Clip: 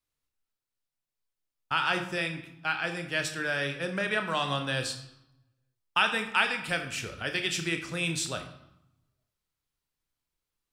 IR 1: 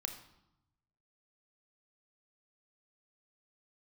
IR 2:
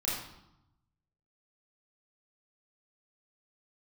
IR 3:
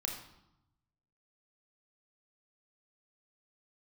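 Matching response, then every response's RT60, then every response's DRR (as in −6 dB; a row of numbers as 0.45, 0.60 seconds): 1; 0.85, 0.85, 0.85 seconds; 5.5, −7.0, 1.0 decibels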